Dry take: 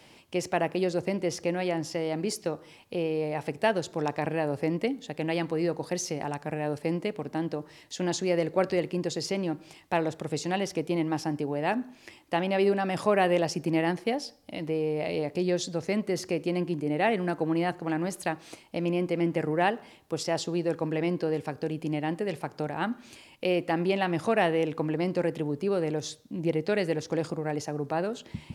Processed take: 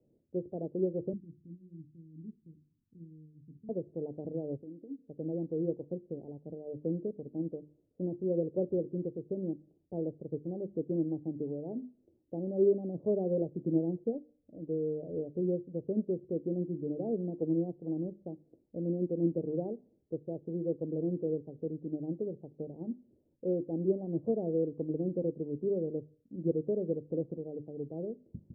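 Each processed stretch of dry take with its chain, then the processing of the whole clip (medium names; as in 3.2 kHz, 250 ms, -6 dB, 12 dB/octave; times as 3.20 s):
1.13–3.69 s: inverse Chebyshev band-stop 980–2300 Hz, stop band 80 dB + peaking EQ 770 Hz -14.5 dB 2 oct + hum notches 60/120/180/240/300/360/420/480/540/600 Hz
4.57–5.08 s: gate -35 dBFS, range -9 dB + compression 12:1, threshold -38 dBFS + peaking EQ 290 Hz +9.5 dB 0.51 oct
whole clip: steep low-pass 520 Hz 36 dB/octave; hum notches 50/100/150/200/250/300/350 Hz; upward expansion 1.5:1, over -44 dBFS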